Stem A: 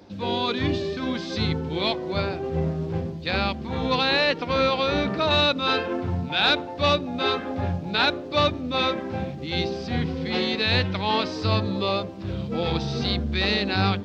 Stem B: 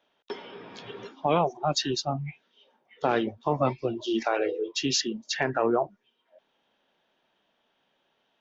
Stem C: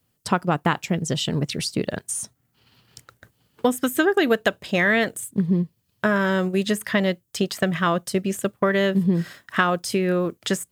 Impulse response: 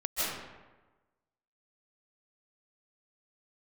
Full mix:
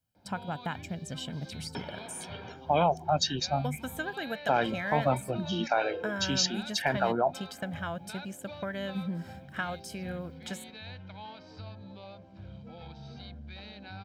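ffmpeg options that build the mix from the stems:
-filter_complex "[0:a]lowpass=frequency=3900:poles=1,acompressor=threshold=-29dB:ratio=4,adelay=150,volume=-15dB[link_01];[1:a]adelay=1450,volume=-2.5dB[link_02];[2:a]volume=-15.5dB[link_03];[link_01][link_02][link_03]amix=inputs=3:normalize=0,aecho=1:1:1.3:0.58"

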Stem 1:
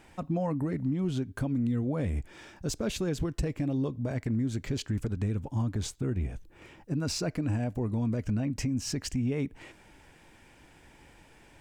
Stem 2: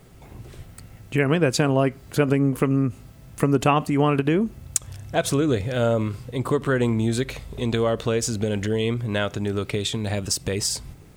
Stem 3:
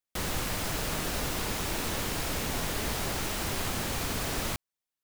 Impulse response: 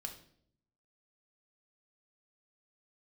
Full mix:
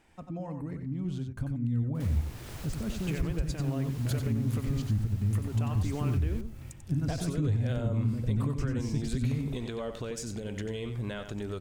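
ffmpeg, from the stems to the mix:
-filter_complex "[0:a]deesser=0.8,bandreject=frequency=126.1:width_type=h:width=4,bandreject=frequency=252.2:width_type=h:width=4,bandreject=frequency=378.3:width_type=h:width=4,bandreject=frequency=504.4:width_type=h:width=4,bandreject=frequency=630.5:width_type=h:width=4,bandreject=frequency=756.6:width_type=h:width=4,bandreject=frequency=882.7:width_type=h:width=4,bandreject=frequency=1008.8:width_type=h:width=4,bandreject=frequency=1134.9:width_type=h:width=4,bandreject=frequency=1261:width_type=h:width=4,bandreject=frequency=1387.1:width_type=h:width=4,bandreject=frequency=1513.2:width_type=h:width=4,bandreject=frequency=1639.3:width_type=h:width=4,asubboost=boost=7:cutoff=190,volume=-8.5dB,asplit=3[link_01][link_02][link_03];[link_02]volume=-6.5dB[link_04];[1:a]acompressor=threshold=-26dB:ratio=6,alimiter=limit=-23dB:level=0:latency=1:release=372,adelay=1950,volume=-4dB,asplit=2[link_05][link_06];[link_06]volume=-8.5dB[link_07];[2:a]adelay=1850,volume=-12.5dB,asplit=2[link_08][link_09];[link_09]volume=-23dB[link_10];[link_03]apad=whole_len=303588[link_11];[link_08][link_11]sidechaincompress=threshold=-34dB:ratio=3:attack=7.7:release=649[link_12];[link_04][link_07][link_10]amix=inputs=3:normalize=0,aecho=0:1:92:1[link_13];[link_01][link_05][link_12][link_13]amix=inputs=4:normalize=0,alimiter=limit=-20dB:level=0:latency=1:release=327"

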